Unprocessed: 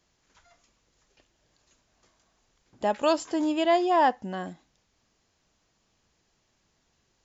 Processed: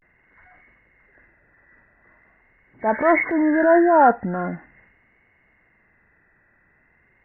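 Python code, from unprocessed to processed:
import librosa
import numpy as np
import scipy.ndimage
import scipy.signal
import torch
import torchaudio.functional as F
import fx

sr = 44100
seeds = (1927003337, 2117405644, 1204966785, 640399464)

y = fx.freq_compress(x, sr, knee_hz=1400.0, ratio=4.0)
y = fx.transient(y, sr, attack_db=-6, sustain_db=6)
y = fx.vibrato(y, sr, rate_hz=0.43, depth_cents=91.0)
y = F.gain(torch.from_numpy(y), 8.0).numpy()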